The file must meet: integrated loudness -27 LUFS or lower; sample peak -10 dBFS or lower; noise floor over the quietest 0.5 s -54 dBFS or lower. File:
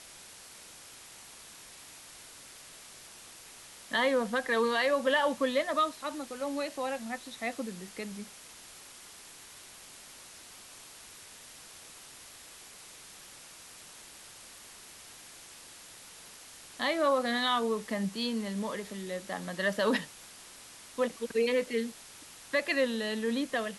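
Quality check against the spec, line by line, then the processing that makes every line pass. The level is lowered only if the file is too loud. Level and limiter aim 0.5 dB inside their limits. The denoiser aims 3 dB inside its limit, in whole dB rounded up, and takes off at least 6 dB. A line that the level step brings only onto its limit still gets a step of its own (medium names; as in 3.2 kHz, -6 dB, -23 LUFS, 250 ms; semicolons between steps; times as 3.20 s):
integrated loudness -31.0 LUFS: pass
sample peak -15.5 dBFS: pass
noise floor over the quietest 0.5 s -51 dBFS: fail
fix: noise reduction 6 dB, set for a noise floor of -51 dBFS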